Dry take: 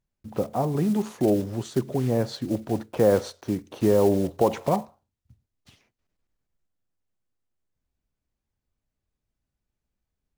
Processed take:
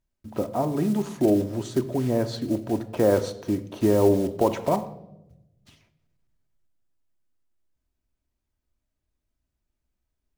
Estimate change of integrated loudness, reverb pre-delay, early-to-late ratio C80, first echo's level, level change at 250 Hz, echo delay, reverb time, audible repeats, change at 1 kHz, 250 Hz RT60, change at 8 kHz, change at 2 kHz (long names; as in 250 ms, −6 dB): +0.5 dB, 3 ms, 17.5 dB, no echo audible, +1.5 dB, no echo audible, 0.90 s, no echo audible, 0.0 dB, 1.3 s, +0.5 dB, +0.5 dB